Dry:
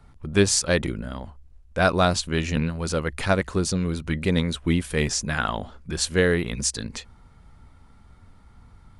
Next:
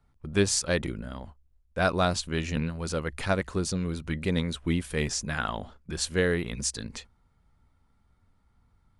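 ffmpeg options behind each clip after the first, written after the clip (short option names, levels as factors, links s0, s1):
-af "agate=range=0.316:threshold=0.01:ratio=16:detection=peak,volume=0.562"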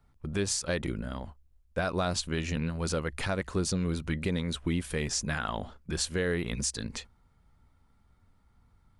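-af "alimiter=limit=0.0944:level=0:latency=1:release=185,volume=1.19"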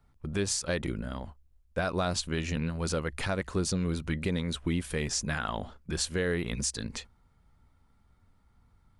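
-af anull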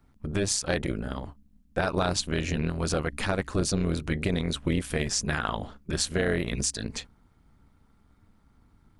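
-af "tremolo=f=210:d=0.75,volume=2.11"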